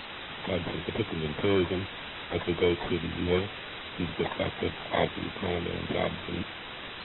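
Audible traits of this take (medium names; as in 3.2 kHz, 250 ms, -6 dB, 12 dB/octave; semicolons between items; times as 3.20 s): aliases and images of a low sample rate 2.7 kHz, jitter 0%; tremolo saw up 0.59 Hz, depth 40%; a quantiser's noise floor 6-bit, dither triangular; AAC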